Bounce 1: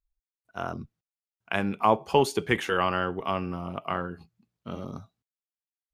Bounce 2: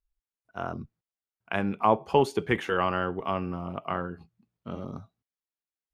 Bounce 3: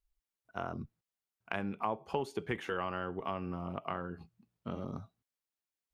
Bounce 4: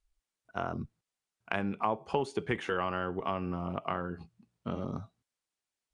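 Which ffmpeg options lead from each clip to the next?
ffmpeg -i in.wav -af "highshelf=frequency=3300:gain=-9.5" out.wav
ffmpeg -i in.wav -af "acompressor=threshold=-35dB:ratio=3" out.wav
ffmpeg -i in.wav -af "aresample=22050,aresample=44100,volume=4dB" out.wav

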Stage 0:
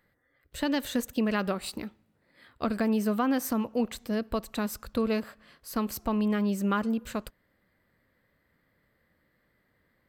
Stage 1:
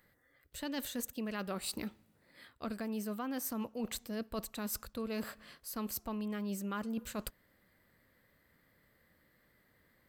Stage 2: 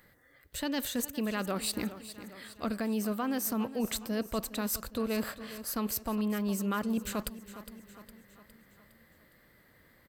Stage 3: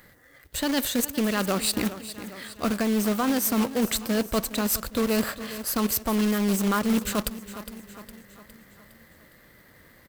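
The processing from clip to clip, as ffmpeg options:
ffmpeg -i in.wav -af "highshelf=frequency=4800:gain=8.5,areverse,acompressor=threshold=-36dB:ratio=6,areverse" out.wav
ffmpeg -i in.wav -filter_complex "[0:a]aecho=1:1:410|820|1230|1640|2050:0.178|0.0925|0.0481|0.025|0.013,asplit=2[link_01][link_02];[link_02]alimiter=level_in=7dB:limit=-24dB:level=0:latency=1:release=238,volume=-7dB,volume=0dB[link_03];[link_01][link_03]amix=inputs=2:normalize=0,volume=1.5dB" out.wav
ffmpeg -i in.wav -af "acrusher=bits=2:mode=log:mix=0:aa=0.000001,volume=7.5dB" out.wav

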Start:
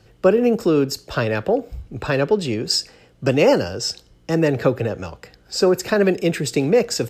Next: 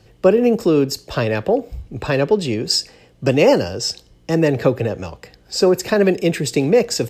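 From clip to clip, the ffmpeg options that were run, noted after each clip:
ffmpeg -i in.wav -af "equalizer=frequency=1400:width_type=o:width=0.27:gain=-7,volume=2dB" out.wav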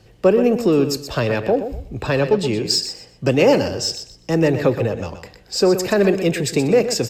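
ffmpeg -i in.wav -filter_complex "[0:a]asplit=2[link_01][link_02];[link_02]asoftclip=type=tanh:threshold=-19dB,volume=-10.5dB[link_03];[link_01][link_03]amix=inputs=2:normalize=0,aecho=1:1:123|246|369:0.316|0.0727|0.0167,volume=-2dB" out.wav

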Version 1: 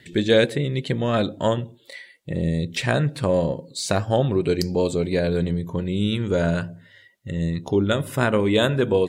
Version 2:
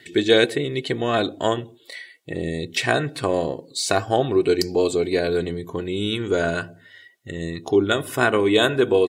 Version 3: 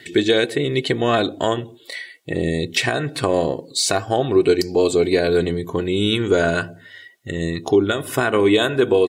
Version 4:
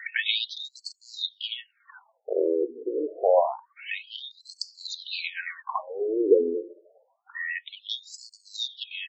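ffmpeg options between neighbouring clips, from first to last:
ffmpeg -i in.wav -af "highpass=frequency=260:poles=1,aecho=1:1:2.7:0.51,volume=2.5dB" out.wav
ffmpeg -i in.wav -af "alimiter=limit=-11.5dB:level=0:latency=1:release=282,volume=5.5dB" out.wav
ffmpeg -i in.wav -filter_complex "[0:a]bass=frequency=250:gain=-7,treble=frequency=4000:gain=-5,asplit=2[link_01][link_02];[link_02]highpass=frequency=720:poles=1,volume=12dB,asoftclip=type=tanh:threshold=-6dB[link_03];[link_01][link_03]amix=inputs=2:normalize=0,lowpass=frequency=2700:poles=1,volume=-6dB,afftfilt=real='re*between(b*sr/1024,360*pow(6000/360,0.5+0.5*sin(2*PI*0.27*pts/sr))/1.41,360*pow(6000/360,0.5+0.5*sin(2*PI*0.27*pts/sr))*1.41)':imag='im*between(b*sr/1024,360*pow(6000/360,0.5+0.5*sin(2*PI*0.27*pts/sr))/1.41,360*pow(6000/360,0.5+0.5*sin(2*PI*0.27*pts/sr))*1.41)':win_size=1024:overlap=0.75" out.wav

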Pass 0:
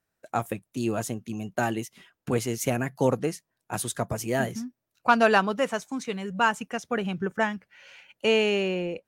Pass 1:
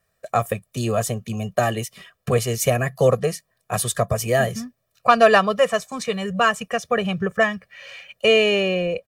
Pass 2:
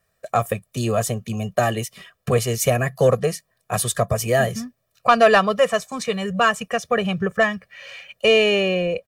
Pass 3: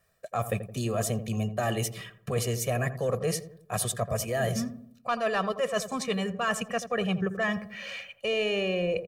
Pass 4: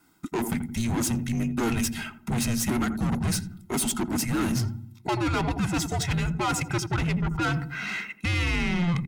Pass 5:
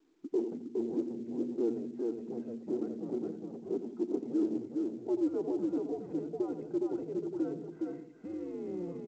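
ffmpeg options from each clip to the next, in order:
ffmpeg -i in.wav -filter_complex "[0:a]bandreject=frequency=6300:width=16,aecho=1:1:1.7:0.99,asplit=2[link_01][link_02];[link_02]acompressor=threshold=-30dB:ratio=6,volume=-2dB[link_03];[link_01][link_03]amix=inputs=2:normalize=0,volume=2dB" out.wav
ffmpeg -i in.wav -af "asoftclip=type=tanh:threshold=-4dB,volume=1dB" out.wav
ffmpeg -i in.wav -filter_complex "[0:a]areverse,acompressor=threshold=-26dB:ratio=6,areverse,asplit=2[link_01][link_02];[link_02]adelay=84,lowpass=frequency=830:poles=1,volume=-9.5dB,asplit=2[link_03][link_04];[link_04]adelay=84,lowpass=frequency=830:poles=1,volume=0.51,asplit=2[link_05][link_06];[link_06]adelay=84,lowpass=frequency=830:poles=1,volume=0.51,asplit=2[link_07][link_08];[link_08]adelay=84,lowpass=frequency=830:poles=1,volume=0.51,asplit=2[link_09][link_10];[link_10]adelay=84,lowpass=frequency=830:poles=1,volume=0.51,asplit=2[link_11][link_12];[link_12]adelay=84,lowpass=frequency=830:poles=1,volume=0.51[link_13];[link_01][link_03][link_05][link_07][link_09][link_11][link_13]amix=inputs=7:normalize=0" out.wav
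ffmpeg -i in.wav -af "asoftclip=type=tanh:threshold=-30dB,afreqshift=-350,volume=8dB" out.wav
ffmpeg -i in.wav -af "asuperpass=centerf=390:order=4:qfactor=2,aecho=1:1:413:0.708" -ar 16000 -c:a pcm_mulaw out.wav

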